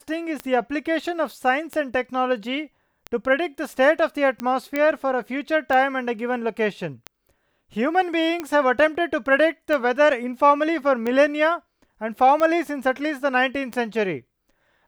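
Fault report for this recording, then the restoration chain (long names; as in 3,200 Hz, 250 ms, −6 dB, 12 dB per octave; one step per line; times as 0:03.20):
scratch tick 45 rpm −14 dBFS
0:04.76: click −11 dBFS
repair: click removal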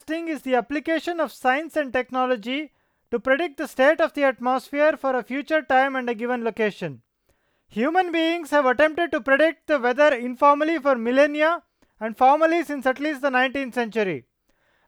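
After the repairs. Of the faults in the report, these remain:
none of them is left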